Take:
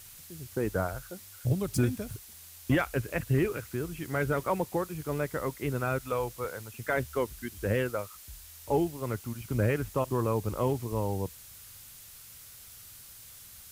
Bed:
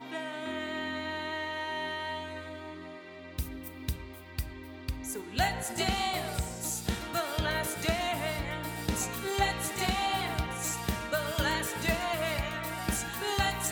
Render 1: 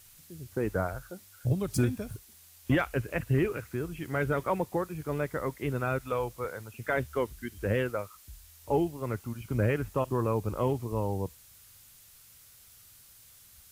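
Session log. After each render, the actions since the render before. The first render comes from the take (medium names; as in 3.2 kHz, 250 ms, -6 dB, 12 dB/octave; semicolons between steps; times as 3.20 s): noise print and reduce 6 dB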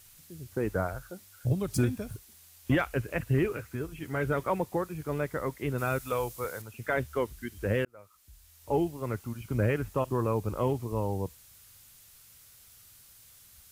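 3.57–4.25 s: comb of notches 180 Hz; 5.78–6.62 s: treble shelf 4.3 kHz +9.5 dB; 7.85–8.83 s: fade in linear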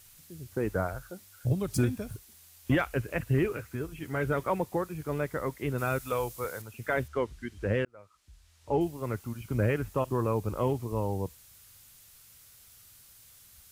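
7.08–8.81 s: distance through air 66 m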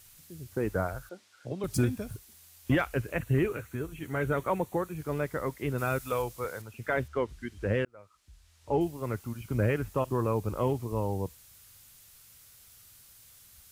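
1.09–1.64 s: band-pass 280–5200 Hz; 3.11–4.97 s: band-stop 5 kHz, Q 5.3; 6.22–7.29 s: treble shelf 7.1 kHz -6 dB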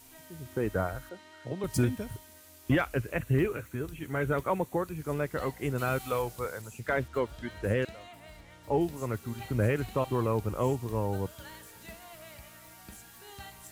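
add bed -18 dB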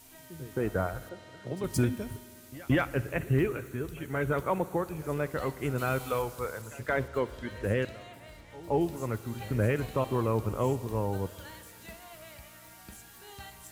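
reverse echo 174 ms -20 dB; spring tank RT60 2.1 s, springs 53 ms, chirp 50 ms, DRR 16.5 dB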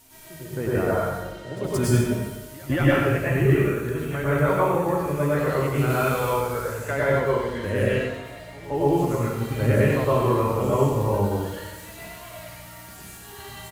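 delay 93 ms -6.5 dB; plate-style reverb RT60 0.82 s, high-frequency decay 0.85×, pre-delay 95 ms, DRR -7 dB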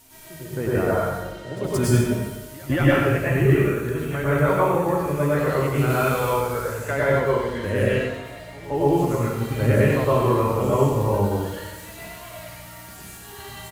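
trim +1.5 dB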